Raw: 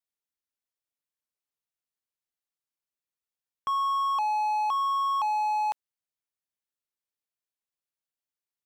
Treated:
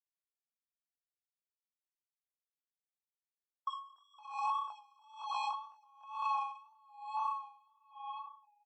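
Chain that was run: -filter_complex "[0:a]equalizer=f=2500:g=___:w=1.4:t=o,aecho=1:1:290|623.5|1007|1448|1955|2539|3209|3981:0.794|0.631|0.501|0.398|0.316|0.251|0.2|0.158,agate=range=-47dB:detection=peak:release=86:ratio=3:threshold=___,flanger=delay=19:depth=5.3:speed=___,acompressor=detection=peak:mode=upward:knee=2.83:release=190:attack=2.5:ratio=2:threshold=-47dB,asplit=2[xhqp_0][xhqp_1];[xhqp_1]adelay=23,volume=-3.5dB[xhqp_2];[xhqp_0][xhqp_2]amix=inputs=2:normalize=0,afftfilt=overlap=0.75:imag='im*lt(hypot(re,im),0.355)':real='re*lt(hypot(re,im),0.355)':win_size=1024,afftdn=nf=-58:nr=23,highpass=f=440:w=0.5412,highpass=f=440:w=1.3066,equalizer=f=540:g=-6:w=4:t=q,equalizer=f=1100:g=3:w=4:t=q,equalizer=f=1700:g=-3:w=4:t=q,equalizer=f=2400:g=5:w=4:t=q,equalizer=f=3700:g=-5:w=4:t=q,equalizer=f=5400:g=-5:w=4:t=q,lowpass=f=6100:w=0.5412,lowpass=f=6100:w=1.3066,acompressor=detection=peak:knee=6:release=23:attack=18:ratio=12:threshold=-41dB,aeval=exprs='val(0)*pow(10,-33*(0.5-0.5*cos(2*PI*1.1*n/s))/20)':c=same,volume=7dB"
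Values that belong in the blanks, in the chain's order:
-4.5, -32dB, 1.9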